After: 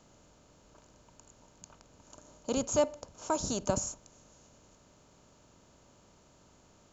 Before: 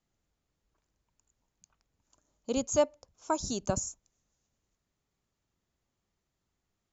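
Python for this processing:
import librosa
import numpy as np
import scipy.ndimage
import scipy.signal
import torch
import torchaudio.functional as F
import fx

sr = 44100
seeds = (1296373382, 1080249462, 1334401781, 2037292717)

y = fx.bin_compress(x, sr, power=0.6)
y = y * 10.0 ** (-2.5 / 20.0)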